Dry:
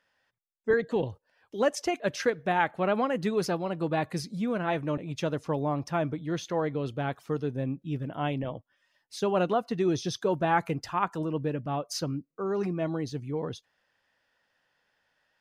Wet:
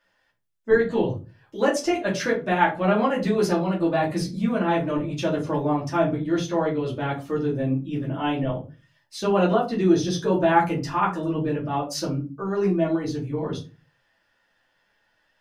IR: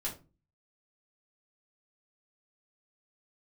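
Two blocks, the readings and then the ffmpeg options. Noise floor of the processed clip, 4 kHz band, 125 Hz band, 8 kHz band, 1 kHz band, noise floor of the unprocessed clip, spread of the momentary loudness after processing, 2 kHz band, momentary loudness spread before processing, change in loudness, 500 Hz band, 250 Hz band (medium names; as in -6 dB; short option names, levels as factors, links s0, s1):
-69 dBFS, +4.5 dB, +5.5 dB, +4.5 dB, +5.5 dB, -76 dBFS, 9 LU, +5.0 dB, 8 LU, +6.0 dB, +5.5 dB, +7.5 dB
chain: -filter_complex "[1:a]atrim=start_sample=2205[s0];[0:a][s0]afir=irnorm=-1:irlink=0,volume=1.5"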